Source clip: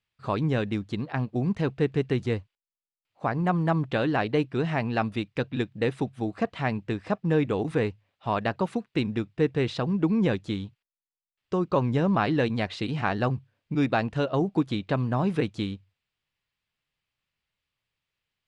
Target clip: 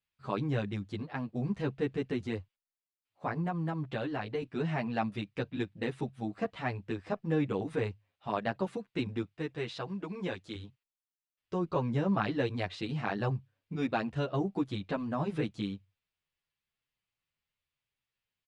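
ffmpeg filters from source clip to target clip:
-filter_complex "[0:a]asettb=1/sr,asplit=3[s0][s1][s2];[s0]atrim=end=3.384[s3];[s1]atrim=start=3.38:end=4.42,asetpts=PTS-STARTPTS,afade=t=in:d=0.004:c=qsin,afade=t=out:st=1.036:d=0.004:c=qsin,acompressor=threshold=0.0501:ratio=3[s4];[s2]atrim=start=4.416[s5];[s3][s4]acrossfade=d=0.004:c1=hsin:c2=qsin[s6];[s6][s5]acrossfade=d=0.004:c1=qsin:c2=hsin,asettb=1/sr,asplit=3[s7][s8][s9];[s7]atrim=end=9.254[s10];[s8]atrim=start=9.25:end=10.55,asetpts=PTS-STARTPTS,afade=t=in:d=0.004:c=qsin,afade=t=out:st=1.296:d=0.004:c=qsin,lowshelf=f=360:g=-10[s11];[s9]atrim=start=10.546[s12];[s10][s11]acrossfade=d=0.004:c1=hsin:c2=qsin[s13];[s13][s12]acrossfade=d=0.004:c1=qsin:c2=hsin,asplit=2[s14][s15];[s15]adelay=9.3,afreqshift=-0.86[s16];[s14][s16]amix=inputs=2:normalize=1,volume=0.668"

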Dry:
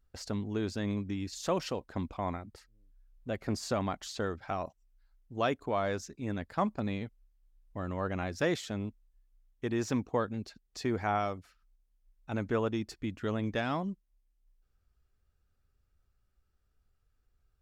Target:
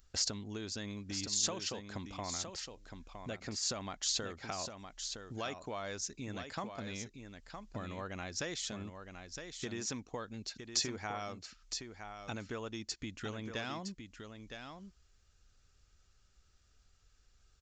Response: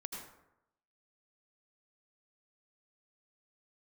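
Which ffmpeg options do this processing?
-filter_complex "[0:a]aresample=16000,aresample=44100,acompressor=threshold=0.00447:ratio=4,asplit=2[s0][s1];[s1]aecho=0:1:963:0.422[s2];[s0][s2]amix=inputs=2:normalize=0,crystalizer=i=6:c=0,volume=1.58"

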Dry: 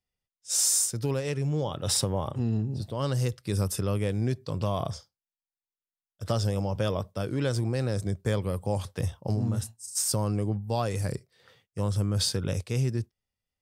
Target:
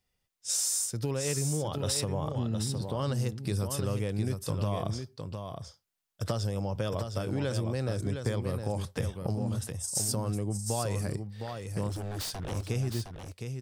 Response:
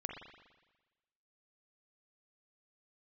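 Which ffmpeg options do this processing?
-filter_complex "[0:a]acompressor=threshold=0.00891:ratio=3,asettb=1/sr,asplit=3[s0][s1][s2];[s0]atrim=end=11.894[s3];[s1]atrim=start=11.89:end=12.69,asetpts=PTS-STARTPTS,afade=t=in:d=0.004:c=qsin,afade=t=out:st=0.796:d=0.004:c=qsin,aeval=exprs='0.0112*(abs(mod(val(0)/0.0112+3,4)-2)-1)':c=same[s4];[s2]atrim=start=12.686[s5];[s3][s4]acrossfade=d=0.004:c1=hsin:c2=qsin[s6];[s6][s5]acrossfade=d=0.004:c1=qsin:c2=hsin,aecho=1:1:712:0.473,volume=2.66"

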